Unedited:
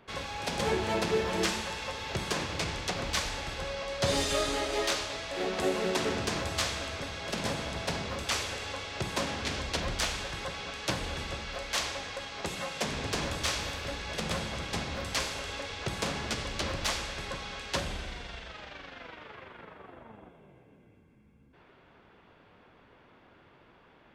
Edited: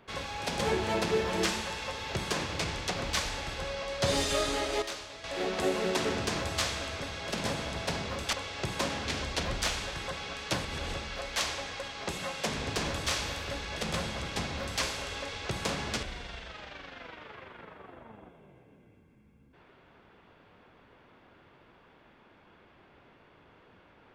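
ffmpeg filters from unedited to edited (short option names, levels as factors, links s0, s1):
-filter_complex "[0:a]asplit=7[s0][s1][s2][s3][s4][s5][s6];[s0]atrim=end=4.822[s7];[s1]atrim=start=4.818:end=5.242,asetpts=PTS-STARTPTS,volume=0.376[s8];[s2]atrim=start=5.238:end=8.332[s9];[s3]atrim=start=8.698:end=11.022[s10];[s4]atrim=start=11.018:end=11.302,asetpts=PTS-STARTPTS,areverse[s11];[s5]atrim=start=11.298:end=16.402[s12];[s6]atrim=start=18.028[s13];[s7][s8]acrossfade=d=0.004:c1=hsin:c2=hsin[s14];[s14][s9]acrossfade=d=0.004:c1=hsin:c2=hsin[s15];[s15][s10]acrossfade=d=0.004:c1=hsin:c2=hsin[s16];[s16][s11]acrossfade=d=0.004:c1=hsin:c2=hsin[s17];[s17][s12]acrossfade=d=0.004:c1=hsin:c2=hsin[s18];[s18][s13]acrossfade=d=0.004:c1=hsin:c2=hsin"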